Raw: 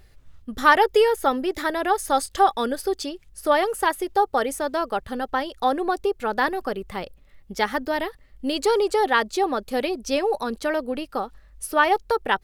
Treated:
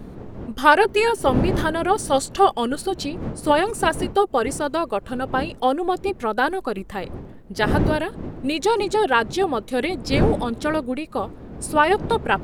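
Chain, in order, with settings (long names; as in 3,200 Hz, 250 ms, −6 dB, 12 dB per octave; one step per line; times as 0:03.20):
wind on the microphone 330 Hz −32 dBFS
formants moved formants −2 semitones
level +2 dB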